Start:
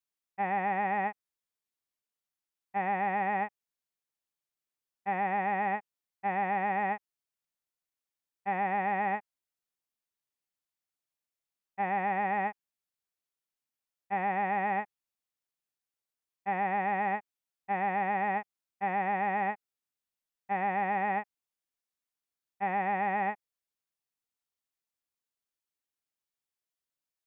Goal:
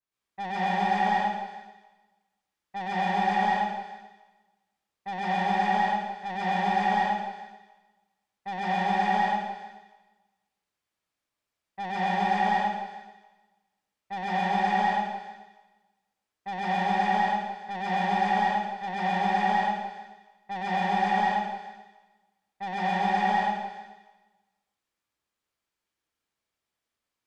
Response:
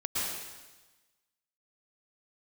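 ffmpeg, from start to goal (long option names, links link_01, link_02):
-filter_complex "[0:a]aemphasis=mode=reproduction:type=50kf,asoftclip=type=tanh:threshold=-33dB[link_01];[1:a]atrim=start_sample=2205[link_02];[link_01][link_02]afir=irnorm=-1:irlink=0,adynamicequalizer=threshold=0.00562:dfrequency=3000:dqfactor=0.7:tfrequency=3000:tqfactor=0.7:attack=5:release=100:ratio=0.375:range=2:mode=cutabove:tftype=highshelf,volume=4.5dB"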